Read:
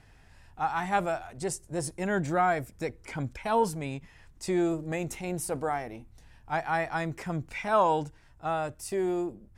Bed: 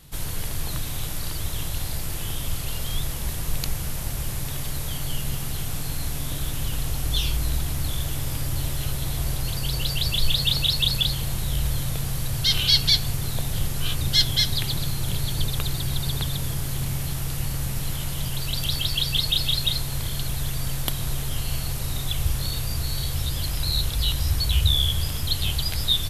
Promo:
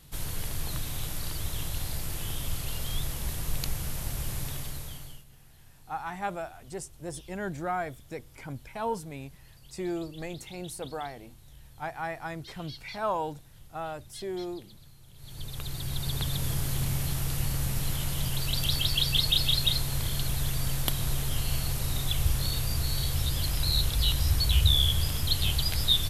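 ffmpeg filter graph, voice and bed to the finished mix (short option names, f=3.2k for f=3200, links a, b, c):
-filter_complex "[0:a]adelay=5300,volume=-6dB[a];[1:a]volume=21dB,afade=t=out:st=4.43:d=0.82:silence=0.0707946,afade=t=in:st=15.15:d=1.39:silence=0.0530884[b];[a][b]amix=inputs=2:normalize=0"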